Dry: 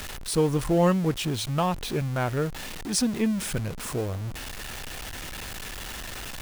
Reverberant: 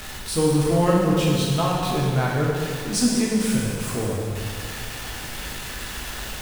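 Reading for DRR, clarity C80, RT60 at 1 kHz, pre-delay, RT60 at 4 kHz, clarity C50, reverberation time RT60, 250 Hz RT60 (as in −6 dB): −4.0 dB, 1.0 dB, 2.2 s, 5 ms, 2.0 s, −1.0 dB, 2.2 s, 2.2 s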